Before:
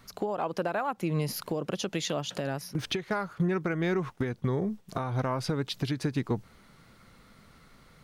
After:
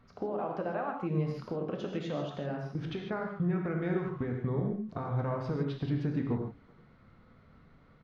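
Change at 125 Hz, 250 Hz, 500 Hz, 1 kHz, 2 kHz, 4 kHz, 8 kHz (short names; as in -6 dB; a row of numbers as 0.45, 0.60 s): -1.0 dB, -2.0 dB, -3.0 dB, -4.5 dB, -7.0 dB, -14.0 dB, under -20 dB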